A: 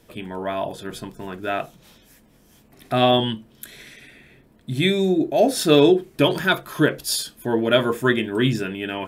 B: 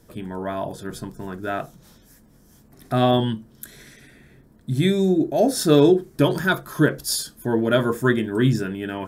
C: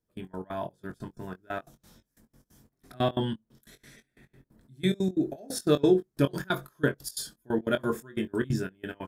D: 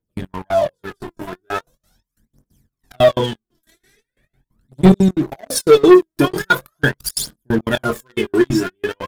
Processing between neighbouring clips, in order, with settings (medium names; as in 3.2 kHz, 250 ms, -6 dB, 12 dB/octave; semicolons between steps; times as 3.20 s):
FFT filter 140 Hz 0 dB, 670 Hz -6 dB, 1.6 kHz -4 dB, 2.6 kHz -14 dB, 5.4 kHz -3 dB; trim +3.5 dB
trance gate "..x.x.xx" 180 bpm -24 dB; doubling 22 ms -9.5 dB; trim -6.5 dB
phaser 0.41 Hz, delay 3.2 ms, feedback 77%; waveshaping leveller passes 3; trim -1 dB